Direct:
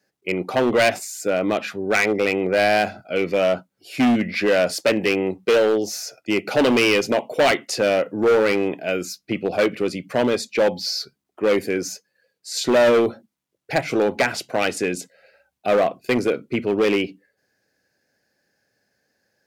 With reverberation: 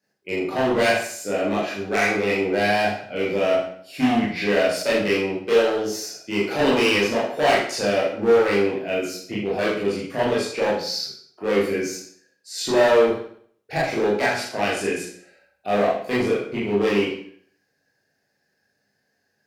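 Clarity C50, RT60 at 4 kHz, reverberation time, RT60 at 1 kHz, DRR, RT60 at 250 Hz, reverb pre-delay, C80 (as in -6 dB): 3.5 dB, 0.55 s, 0.60 s, 0.55 s, -8.0 dB, 0.60 s, 20 ms, 7.0 dB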